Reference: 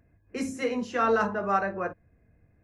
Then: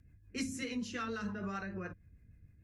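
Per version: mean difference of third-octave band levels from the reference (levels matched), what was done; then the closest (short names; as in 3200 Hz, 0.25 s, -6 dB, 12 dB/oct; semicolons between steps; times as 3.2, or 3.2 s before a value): 6.0 dB: rotary speaker horn 6.7 Hz; dynamic EQ 4000 Hz, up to +4 dB, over -49 dBFS, Q 1.4; compressor 4:1, threshold -31 dBFS, peak gain reduction 9 dB; passive tone stack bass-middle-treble 6-0-2; gain +17.5 dB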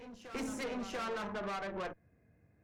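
8.5 dB: HPF 92 Hz; compressor 6:1, threshold -30 dBFS, peak gain reduction 10.5 dB; tube stage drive 38 dB, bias 0.8; on a send: reverse echo 0.689 s -11 dB; on the sum: gain +2.5 dB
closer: first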